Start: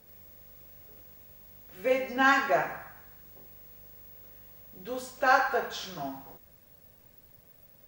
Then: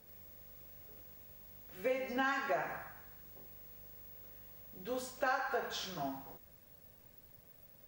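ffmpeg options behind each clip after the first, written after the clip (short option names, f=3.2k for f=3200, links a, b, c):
-af "acompressor=threshold=-28dB:ratio=6,volume=-3dB"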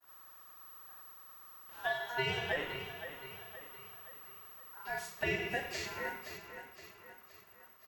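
-af "agate=range=-33dB:threshold=-57dB:ratio=3:detection=peak,aecho=1:1:519|1038|1557|2076|2595:0.299|0.14|0.0659|0.031|0.0146,aeval=exprs='val(0)*sin(2*PI*1200*n/s)':c=same,volume=2.5dB"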